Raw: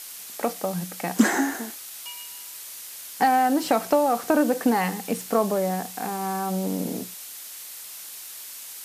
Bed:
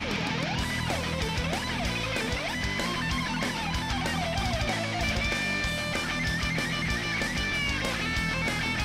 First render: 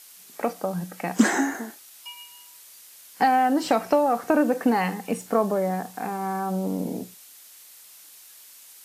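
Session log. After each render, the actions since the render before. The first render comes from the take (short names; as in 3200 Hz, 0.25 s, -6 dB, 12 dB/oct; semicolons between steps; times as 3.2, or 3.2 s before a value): noise print and reduce 9 dB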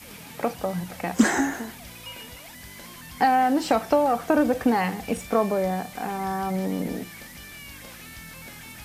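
add bed -14.5 dB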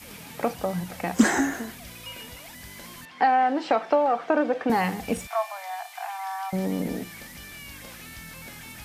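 1.39–2.22 notch 870 Hz, Q 7.4; 3.05–4.7 BPF 350–3300 Hz; 5.27–6.53 rippled Chebyshev high-pass 660 Hz, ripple 3 dB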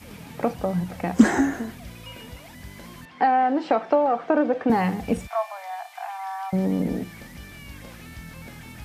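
HPF 44 Hz; tilt -2 dB/oct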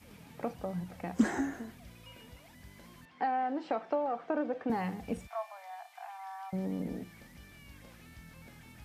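gain -12 dB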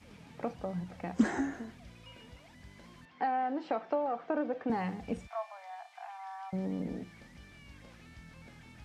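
LPF 7100 Hz 12 dB/oct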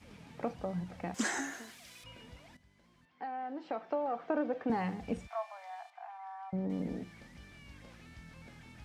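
1.14–2.04 tilt +4.5 dB/oct; 2.57–4.26 fade in quadratic, from -13.5 dB; 5.9–6.7 LPF 1200 Hz 6 dB/oct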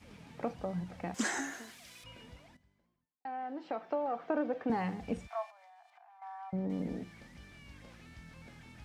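2.22–3.25 studio fade out; 5.5–6.22 compressor, threshold -57 dBFS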